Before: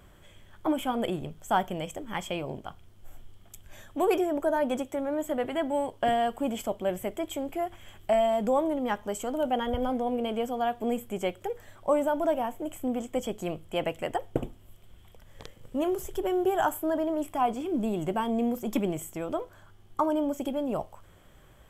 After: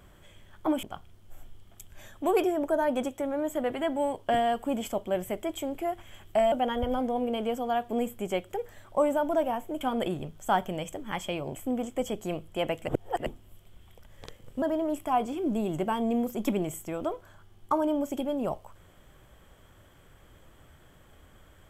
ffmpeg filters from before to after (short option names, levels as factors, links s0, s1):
-filter_complex "[0:a]asplit=8[s0][s1][s2][s3][s4][s5][s6][s7];[s0]atrim=end=0.832[s8];[s1]atrim=start=2.568:end=8.262[s9];[s2]atrim=start=9.428:end=12.722[s10];[s3]atrim=start=0.828:end=2.572[s11];[s4]atrim=start=12.718:end=14.052[s12];[s5]atrim=start=14.048:end=14.432,asetpts=PTS-STARTPTS,areverse[s13];[s6]atrim=start=14.428:end=15.792[s14];[s7]atrim=start=16.898[s15];[s8][s9]acrossfade=d=0.004:c1=hsin:c2=hsin[s16];[s16][s10]acrossfade=d=0.004:c1=hsin:c2=hsin[s17];[s17][s11]acrossfade=d=0.004:c1=hsin:c2=hsin[s18];[s18][s12]acrossfade=d=0.004:c1=hsin:c2=hsin[s19];[s19][s13]acrossfade=d=0.004:c1=hsin:c2=hsin[s20];[s20][s14]acrossfade=d=0.004:c1=hsin:c2=hsin[s21];[s21][s15]acrossfade=d=0.004:c1=hsin:c2=hsin"